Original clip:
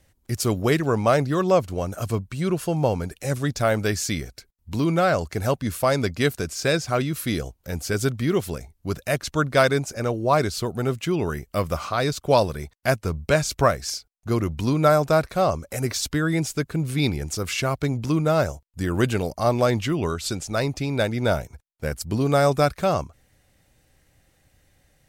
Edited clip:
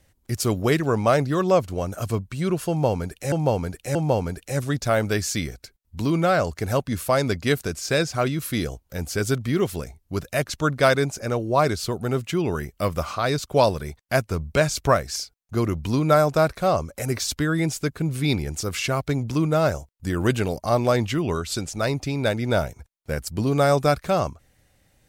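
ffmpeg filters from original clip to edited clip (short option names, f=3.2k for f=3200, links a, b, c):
-filter_complex "[0:a]asplit=3[a][b][c];[a]atrim=end=3.322[d];[b]atrim=start=2.688:end=3.322[e];[c]atrim=start=2.688[f];[d][e]acrossfade=d=0.004:c1=hsin:c2=hsin[g];[g][f]acrossfade=d=0.004:c1=hsin:c2=hsin"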